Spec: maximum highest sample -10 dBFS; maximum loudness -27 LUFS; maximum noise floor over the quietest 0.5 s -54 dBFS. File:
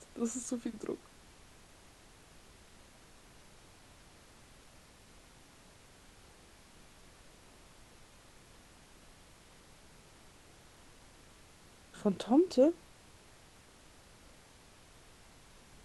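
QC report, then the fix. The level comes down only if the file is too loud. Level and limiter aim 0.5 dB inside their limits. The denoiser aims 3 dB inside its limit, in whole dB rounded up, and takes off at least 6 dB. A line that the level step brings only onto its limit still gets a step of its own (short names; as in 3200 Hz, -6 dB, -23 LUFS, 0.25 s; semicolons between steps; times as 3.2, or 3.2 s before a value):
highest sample -15.5 dBFS: OK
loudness -32.5 LUFS: OK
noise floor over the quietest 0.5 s -59 dBFS: OK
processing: none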